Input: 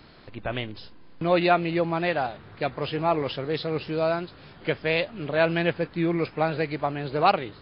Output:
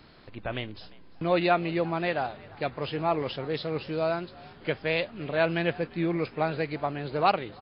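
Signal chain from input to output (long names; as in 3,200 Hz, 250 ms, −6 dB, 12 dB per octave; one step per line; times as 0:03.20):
echo with shifted repeats 347 ms, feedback 36%, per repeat +65 Hz, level −23 dB
level −3 dB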